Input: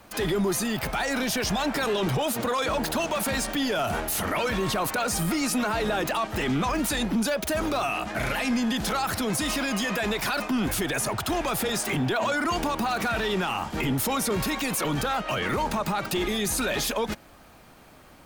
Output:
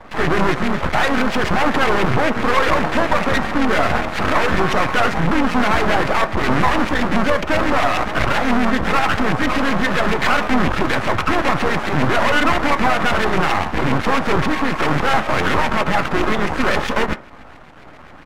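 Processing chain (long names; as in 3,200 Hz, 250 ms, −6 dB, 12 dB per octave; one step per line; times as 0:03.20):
each half-wave held at its own peak
auto-filter low-pass saw up 7.4 Hz 950–2,500 Hz
pitch-shifted copies added −3 semitones −8 dB
half-wave rectification
on a send at −10.5 dB: convolution reverb RT60 0.40 s, pre-delay 3 ms
on the sum: level +7.5 dB
MP3 80 kbit/s 44,100 Hz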